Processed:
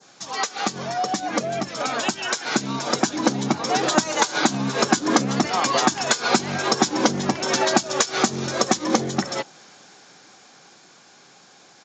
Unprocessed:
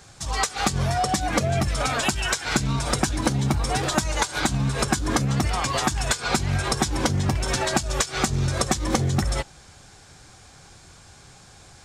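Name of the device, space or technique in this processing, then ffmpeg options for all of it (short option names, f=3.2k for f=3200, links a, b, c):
Bluetooth headset: -af "adynamicequalizer=threshold=0.0126:dfrequency=2400:dqfactor=0.76:tfrequency=2400:tqfactor=0.76:attack=5:release=100:ratio=0.375:range=2:mode=cutabove:tftype=bell,highpass=f=200:w=0.5412,highpass=f=200:w=1.3066,dynaudnorm=f=260:g=21:m=11.5dB,aresample=16000,aresample=44100" -ar 16000 -c:a sbc -b:a 64k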